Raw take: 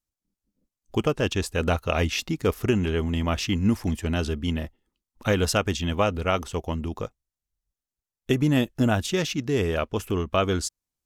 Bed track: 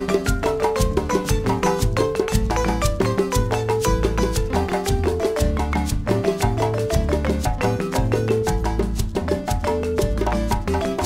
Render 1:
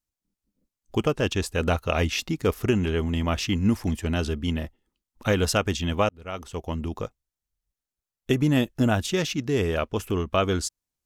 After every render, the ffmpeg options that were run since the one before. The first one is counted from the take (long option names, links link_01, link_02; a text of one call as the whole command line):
ffmpeg -i in.wav -filter_complex "[0:a]asplit=2[link_01][link_02];[link_01]atrim=end=6.09,asetpts=PTS-STARTPTS,afade=type=out:start_time=6.086:duration=0.004:curve=hsin[link_03];[link_02]atrim=start=6.09,asetpts=PTS-STARTPTS,afade=type=in:duration=0.73[link_04];[link_03][link_04]concat=n=2:v=0:a=1" out.wav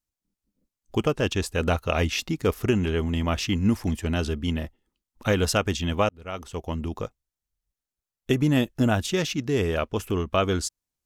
ffmpeg -i in.wav -af anull out.wav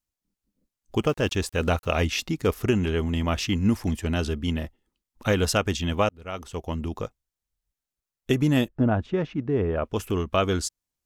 ffmpeg -i in.wav -filter_complex "[0:a]asplit=3[link_01][link_02][link_03];[link_01]afade=type=out:start_time=1.02:duration=0.02[link_04];[link_02]aeval=exprs='val(0)*gte(abs(val(0)),0.00473)':channel_layout=same,afade=type=in:start_time=1.02:duration=0.02,afade=type=out:start_time=1.95:duration=0.02[link_05];[link_03]afade=type=in:start_time=1.95:duration=0.02[link_06];[link_04][link_05][link_06]amix=inputs=3:normalize=0,asettb=1/sr,asplit=3[link_07][link_08][link_09];[link_07]atrim=end=8.684[link_10];[link_08]atrim=start=8.68:end=9.85,asetpts=PTS-STARTPTS,afade=type=in:duration=0.004:curve=qsin,afade=type=out:start_time=1.166:duration=0.004:curve=qsin,lowpass=1300[link_11];[link_09]atrim=start=9.846[link_12];[link_10][link_11]acrossfade=duration=0.004:curve1=hsin:curve2=qsin[link_13];[link_13][link_12]acrossfade=duration=0.004:curve1=qsin:curve2=hsin" out.wav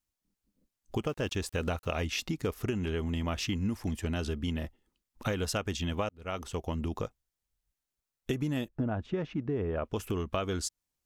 ffmpeg -i in.wav -af "acompressor=threshold=-30dB:ratio=4" out.wav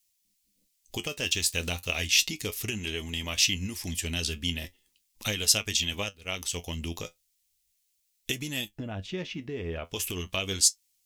ffmpeg -i in.wav -af "aexciter=amount=7.2:drive=3.7:freq=2000,flanger=delay=9.2:depth=2.7:regen=57:speed=0.36:shape=sinusoidal" out.wav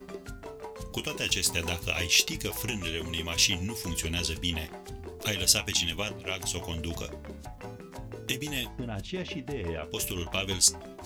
ffmpeg -i in.wav -i bed.wav -filter_complex "[1:a]volume=-21.5dB[link_01];[0:a][link_01]amix=inputs=2:normalize=0" out.wav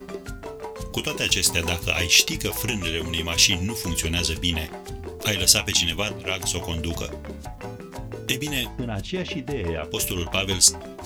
ffmpeg -i in.wav -af "volume=6.5dB,alimiter=limit=-2dB:level=0:latency=1" out.wav